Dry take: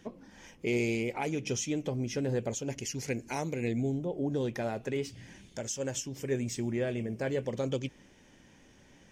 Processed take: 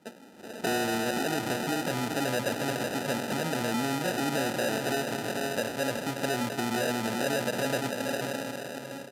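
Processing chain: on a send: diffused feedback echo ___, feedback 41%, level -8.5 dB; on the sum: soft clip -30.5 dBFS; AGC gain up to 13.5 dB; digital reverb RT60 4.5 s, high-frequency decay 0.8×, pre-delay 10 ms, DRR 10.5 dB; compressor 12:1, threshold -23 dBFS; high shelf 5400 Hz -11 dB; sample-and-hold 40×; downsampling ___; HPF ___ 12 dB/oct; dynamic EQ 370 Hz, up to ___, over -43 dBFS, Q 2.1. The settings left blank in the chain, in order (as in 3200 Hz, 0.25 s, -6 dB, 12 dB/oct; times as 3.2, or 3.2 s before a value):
0.464 s, 32000 Hz, 210 Hz, -5 dB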